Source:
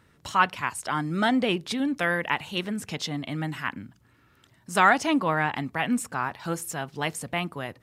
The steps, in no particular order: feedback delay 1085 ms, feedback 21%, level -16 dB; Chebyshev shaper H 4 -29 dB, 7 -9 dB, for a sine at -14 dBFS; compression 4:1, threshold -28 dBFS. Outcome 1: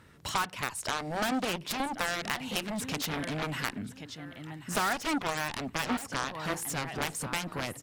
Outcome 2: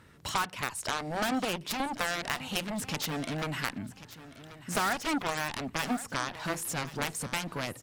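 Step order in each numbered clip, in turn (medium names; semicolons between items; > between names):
feedback delay > Chebyshev shaper > compression; Chebyshev shaper > compression > feedback delay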